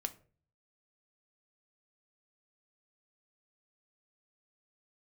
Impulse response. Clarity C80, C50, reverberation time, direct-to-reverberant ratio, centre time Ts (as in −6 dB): 22.5 dB, 17.5 dB, 0.40 s, 8.0 dB, 5 ms